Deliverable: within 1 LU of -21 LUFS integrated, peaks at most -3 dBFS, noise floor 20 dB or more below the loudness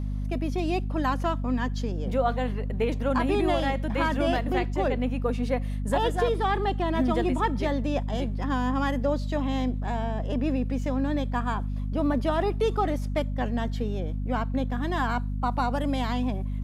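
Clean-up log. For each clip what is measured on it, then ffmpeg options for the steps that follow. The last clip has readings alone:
hum 50 Hz; harmonics up to 250 Hz; hum level -27 dBFS; loudness -27.5 LUFS; peak -12.5 dBFS; loudness target -21.0 LUFS
-> -af "bandreject=f=50:t=h:w=4,bandreject=f=100:t=h:w=4,bandreject=f=150:t=h:w=4,bandreject=f=200:t=h:w=4,bandreject=f=250:t=h:w=4"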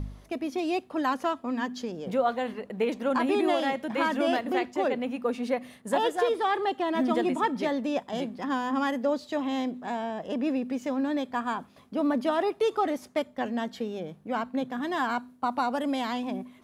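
hum none; loudness -29.0 LUFS; peak -12.0 dBFS; loudness target -21.0 LUFS
-> -af "volume=8dB"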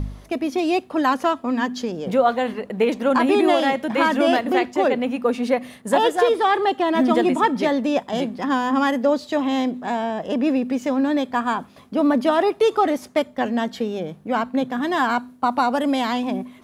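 loudness -21.0 LUFS; peak -4.0 dBFS; noise floor -46 dBFS

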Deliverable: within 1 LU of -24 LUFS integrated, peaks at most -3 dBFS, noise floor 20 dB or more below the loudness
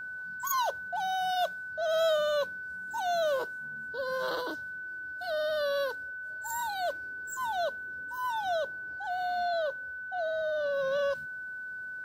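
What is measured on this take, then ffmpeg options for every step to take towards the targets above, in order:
steady tone 1500 Hz; tone level -37 dBFS; loudness -32.5 LUFS; peak -17.0 dBFS; loudness target -24.0 LUFS
-> -af "bandreject=f=1.5k:w=30"
-af "volume=8.5dB"

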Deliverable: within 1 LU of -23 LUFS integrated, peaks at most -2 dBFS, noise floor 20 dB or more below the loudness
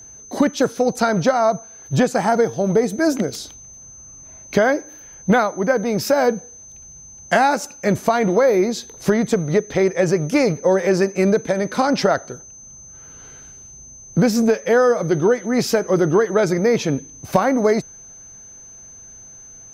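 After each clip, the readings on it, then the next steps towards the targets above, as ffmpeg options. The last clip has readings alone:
steady tone 6200 Hz; tone level -39 dBFS; loudness -18.5 LUFS; peak -3.0 dBFS; loudness target -23.0 LUFS
-> -af "bandreject=f=6.2k:w=30"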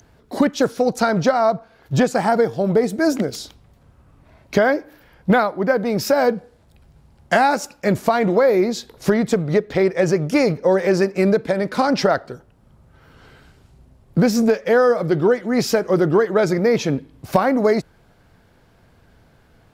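steady tone none; loudness -18.5 LUFS; peak -3.0 dBFS; loudness target -23.0 LUFS
-> -af "volume=-4.5dB"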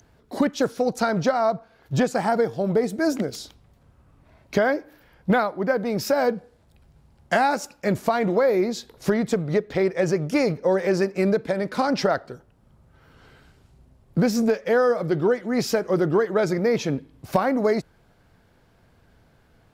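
loudness -23.0 LUFS; peak -7.5 dBFS; noise floor -59 dBFS

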